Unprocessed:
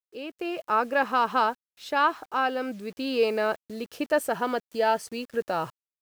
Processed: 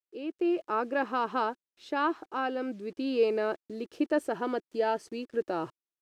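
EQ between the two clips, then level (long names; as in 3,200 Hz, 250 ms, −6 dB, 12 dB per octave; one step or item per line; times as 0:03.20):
high-frequency loss of the air 66 metres
parametric band 340 Hz +13 dB 0.71 octaves
high-shelf EQ 11,000 Hz +6.5 dB
−7.0 dB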